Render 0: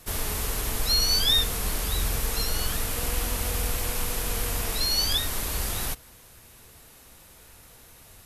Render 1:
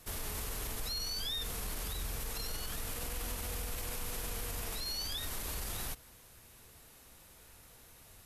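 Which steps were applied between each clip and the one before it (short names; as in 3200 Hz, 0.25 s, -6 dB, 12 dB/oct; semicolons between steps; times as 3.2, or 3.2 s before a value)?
limiter -23 dBFS, peak gain reduction 11.5 dB; gain -6.5 dB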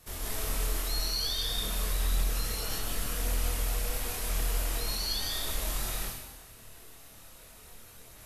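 digital reverb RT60 1.1 s, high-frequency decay 1×, pre-delay 95 ms, DRR -3.5 dB; chorus voices 2, 0.91 Hz, delay 26 ms, depth 2 ms; gain +3.5 dB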